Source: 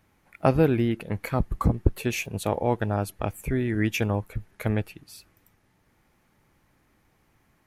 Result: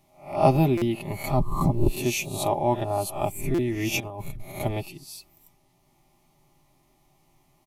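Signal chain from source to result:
peak hold with a rise ahead of every peak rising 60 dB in 0.43 s
phaser with its sweep stopped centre 310 Hz, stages 8
comb filter 5 ms, depth 54%
0:04.00–0:04.52: compressor whose output falls as the input rises −37 dBFS, ratio −1
buffer that repeats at 0:00.77/0:03.54, samples 256, times 7
level +2.5 dB

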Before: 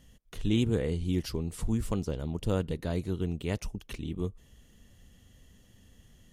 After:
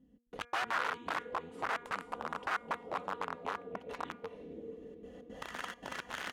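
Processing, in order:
camcorder AGC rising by 21 dB per second
echo through a band-pass that steps 273 ms, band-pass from 2,600 Hz, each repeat −0.7 octaves, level −11.5 dB
gate pattern "xx.xx.xxx" 170 BPM −60 dB
comb filter 4.1 ms, depth 68%
dynamic equaliser 430 Hz, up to +4 dB, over −43 dBFS, Q 3.5
on a send: feedback delay with all-pass diffusion 473 ms, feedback 47%, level −9 dB
on the sum: wrap-around overflow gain 21 dB
envelope filter 270–1,400 Hz, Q 2.1, up, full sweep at −24 dBFS
hum removal 239 Hz, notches 10

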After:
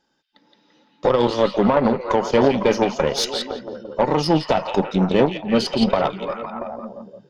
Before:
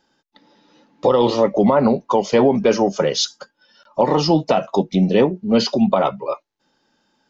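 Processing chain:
echo through a band-pass that steps 170 ms, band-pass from 3,000 Hz, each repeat −0.7 octaves, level 0 dB
harmonic generator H 2 −21 dB, 3 −20 dB, 6 −29 dB, 7 −36 dB, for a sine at −2 dBFS

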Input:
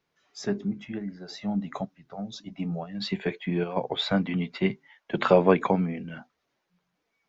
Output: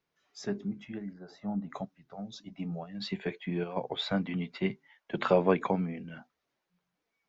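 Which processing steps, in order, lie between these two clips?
0:01.13–0:01.70: high shelf with overshoot 1,800 Hz −10 dB, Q 1.5
level −5.5 dB

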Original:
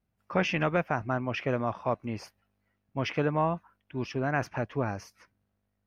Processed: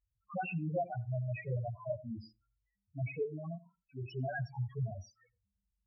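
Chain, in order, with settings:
high-shelf EQ 3,300 Hz +8 dB
0:03.23–0:04.05: output level in coarse steps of 17 dB
multi-voice chorus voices 6, 0.4 Hz, delay 24 ms, depth 1.6 ms
spectral peaks only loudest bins 2
on a send: convolution reverb RT60 0.15 s, pre-delay 81 ms, DRR 22 dB
on the sum: level +1 dB

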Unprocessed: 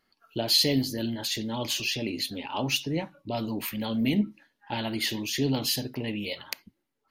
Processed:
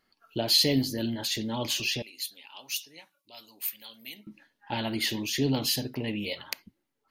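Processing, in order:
0:02.02–0:04.27: first difference

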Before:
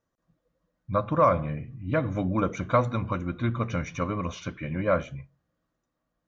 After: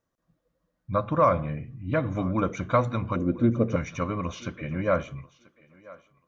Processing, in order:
0:03.16–0:03.76: graphic EQ with 10 bands 250 Hz +7 dB, 500 Hz +11 dB, 1,000 Hz −10 dB, 2,000 Hz −6 dB, 4,000 Hz −8 dB
feedback echo with a high-pass in the loop 987 ms, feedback 20%, high-pass 370 Hz, level −20 dB

